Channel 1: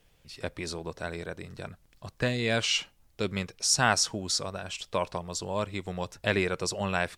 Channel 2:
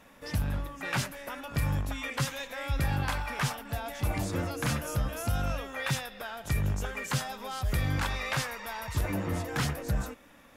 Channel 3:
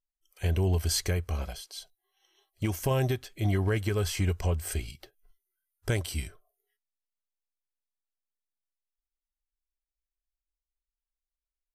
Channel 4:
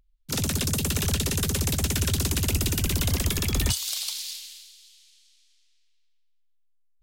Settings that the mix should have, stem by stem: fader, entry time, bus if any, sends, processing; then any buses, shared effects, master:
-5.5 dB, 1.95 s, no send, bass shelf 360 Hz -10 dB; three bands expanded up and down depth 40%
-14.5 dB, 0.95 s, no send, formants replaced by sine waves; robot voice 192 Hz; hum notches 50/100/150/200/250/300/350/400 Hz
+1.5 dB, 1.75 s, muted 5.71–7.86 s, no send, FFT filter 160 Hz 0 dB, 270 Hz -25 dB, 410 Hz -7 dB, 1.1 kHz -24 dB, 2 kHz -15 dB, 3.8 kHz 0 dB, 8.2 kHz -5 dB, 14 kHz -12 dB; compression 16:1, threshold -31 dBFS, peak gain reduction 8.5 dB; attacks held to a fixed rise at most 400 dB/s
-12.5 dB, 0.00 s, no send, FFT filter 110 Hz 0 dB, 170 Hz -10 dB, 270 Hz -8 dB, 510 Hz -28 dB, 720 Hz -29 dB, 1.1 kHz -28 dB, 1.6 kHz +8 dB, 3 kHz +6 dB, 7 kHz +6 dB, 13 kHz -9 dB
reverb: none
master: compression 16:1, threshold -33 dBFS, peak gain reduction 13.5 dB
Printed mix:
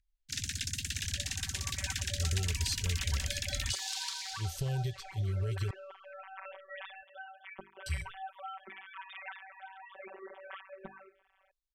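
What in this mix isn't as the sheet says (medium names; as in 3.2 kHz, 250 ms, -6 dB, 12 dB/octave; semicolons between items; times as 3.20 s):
stem 1: muted; master: missing compression 16:1, threshold -33 dBFS, peak gain reduction 13.5 dB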